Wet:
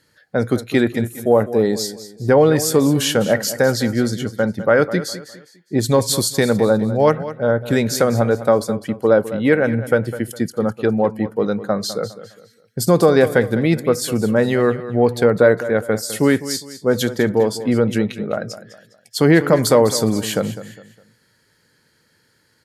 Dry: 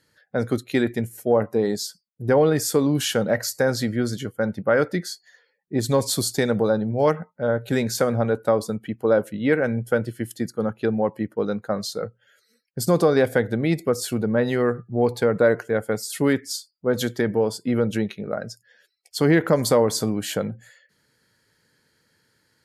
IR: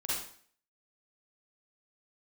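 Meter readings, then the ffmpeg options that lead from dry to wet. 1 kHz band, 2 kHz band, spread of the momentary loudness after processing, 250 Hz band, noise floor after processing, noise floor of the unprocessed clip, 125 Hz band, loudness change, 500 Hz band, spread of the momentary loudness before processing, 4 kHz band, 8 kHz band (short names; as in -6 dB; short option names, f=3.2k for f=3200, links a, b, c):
+5.0 dB, +5.0 dB, 10 LU, +5.0 dB, -61 dBFS, -70 dBFS, +5.0 dB, +5.0 dB, +5.0 dB, 10 LU, +5.0 dB, +5.0 dB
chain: -af "aecho=1:1:204|408|612:0.2|0.0678|0.0231,volume=5dB"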